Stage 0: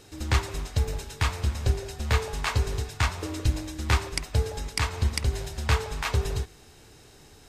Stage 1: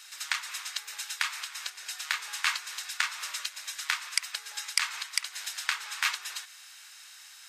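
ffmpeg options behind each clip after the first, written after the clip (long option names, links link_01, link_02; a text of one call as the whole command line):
ffmpeg -i in.wav -af "acompressor=threshold=-27dB:ratio=12,highpass=frequency=1300:width=0.5412,highpass=frequency=1300:width=1.3066,volume=7dB" out.wav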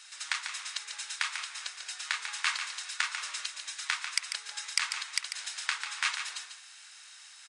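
ffmpeg -i in.wav -filter_complex "[0:a]asplit=2[link_01][link_02];[link_02]aecho=0:1:144:0.398[link_03];[link_01][link_03]amix=inputs=2:normalize=0,aresample=22050,aresample=44100,volume=-2dB" out.wav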